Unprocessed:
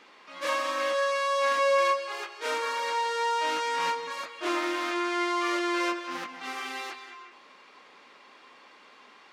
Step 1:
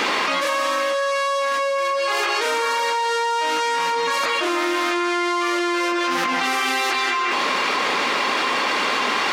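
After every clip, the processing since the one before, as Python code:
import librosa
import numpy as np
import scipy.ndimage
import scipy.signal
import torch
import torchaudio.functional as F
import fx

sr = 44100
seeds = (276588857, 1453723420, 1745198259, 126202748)

y = fx.high_shelf(x, sr, hz=8400.0, db=4.5)
y = fx.env_flatten(y, sr, amount_pct=100)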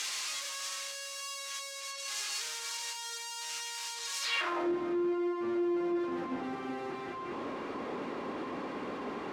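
y = fx.leveller(x, sr, passes=2)
y = 10.0 ** (-23.0 / 20.0) * np.tanh(y / 10.0 ** (-23.0 / 20.0))
y = fx.filter_sweep_bandpass(y, sr, from_hz=6700.0, to_hz=280.0, start_s=4.2, end_s=4.72, q=1.3)
y = F.gain(torch.from_numpy(y), -3.0).numpy()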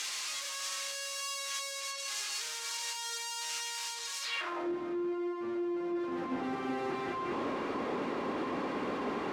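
y = fx.rider(x, sr, range_db=10, speed_s=0.5)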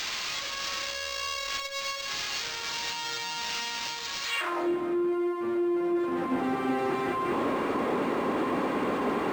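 y = x + 10.0 ** (-22.0 / 20.0) * np.pad(x, (int(353 * sr / 1000.0), 0))[:len(x)]
y = np.interp(np.arange(len(y)), np.arange(len(y))[::4], y[::4])
y = F.gain(torch.from_numpy(y), 7.0).numpy()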